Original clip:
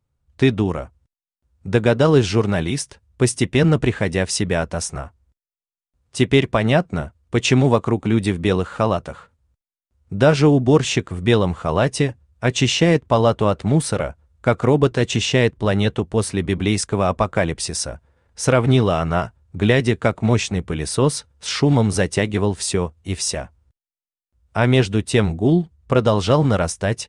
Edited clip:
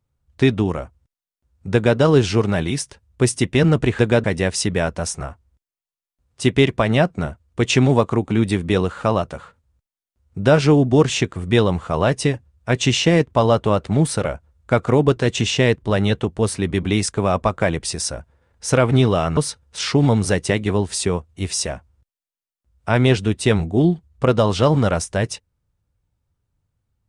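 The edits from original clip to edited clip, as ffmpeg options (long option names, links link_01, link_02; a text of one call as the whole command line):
ffmpeg -i in.wav -filter_complex "[0:a]asplit=4[link_01][link_02][link_03][link_04];[link_01]atrim=end=3.992[link_05];[link_02]atrim=start=1.728:end=1.982[link_06];[link_03]atrim=start=3.988:end=19.122[link_07];[link_04]atrim=start=21.048[link_08];[link_05][link_06]acrossfade=duration=0.004:curve1=hsin:curve2=hsin[link_09];[link_09][link_07]acrossfade=duration=0.004:curve1=hsin:curve2=hsin[link_10];[link_10][link_08]acrossfade=duration=0.004:curve1=hsin:curve2=hsin" out.wav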